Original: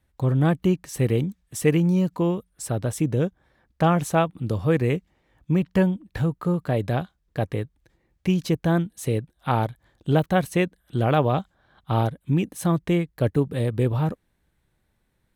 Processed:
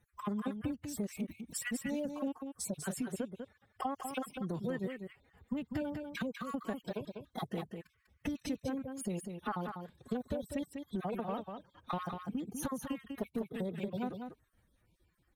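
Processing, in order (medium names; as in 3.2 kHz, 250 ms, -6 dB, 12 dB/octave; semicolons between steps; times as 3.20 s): random holes in the spectrogram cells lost 38%; compression 6:1, threshold -34 dBFS, peak gain reduction 17.5 dB; formant-preserving pitch shift +8 st; on a send: delay 197 ms -6.5 dB; on the sum: trim -1 dB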